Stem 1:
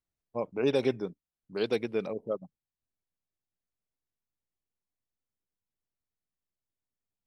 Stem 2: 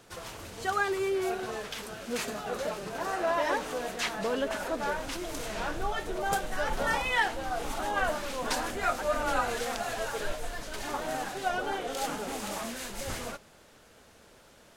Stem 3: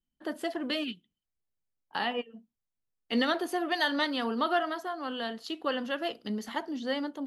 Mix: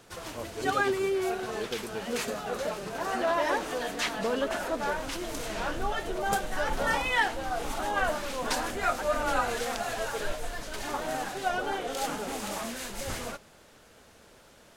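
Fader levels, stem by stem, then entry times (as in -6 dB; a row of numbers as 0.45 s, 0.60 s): -7.0 dB, +1.0 dB, -12.5 dB; 0.00 s, 0.00 s, 0.00 s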